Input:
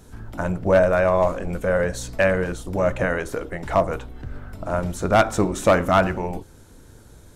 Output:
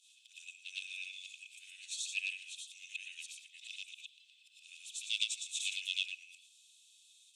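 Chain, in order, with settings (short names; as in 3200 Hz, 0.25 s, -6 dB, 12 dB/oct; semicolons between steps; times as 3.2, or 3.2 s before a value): short-time reversal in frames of 0.237 s; rippled Chebyshev high-pass 2500 Hz, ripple 9 dB; air absorption 100 m; gain +10.5 dB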